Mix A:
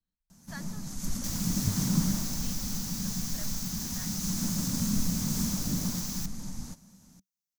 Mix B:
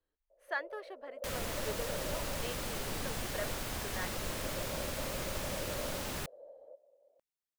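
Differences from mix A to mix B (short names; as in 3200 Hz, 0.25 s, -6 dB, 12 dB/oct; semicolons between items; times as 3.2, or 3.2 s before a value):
first sound: add Butterworth band-pass 570 Hz, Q 5; master: remove EQ curve 120 Hz 0 dB, 190 Hz +13 dB, 390 Hz -19 dB, 940 Hz -9 dB, 2900 Hz -9 dB, 6100 Hz +12 dB, 8900 Hz -1 dB, 15000 Hz +7 dB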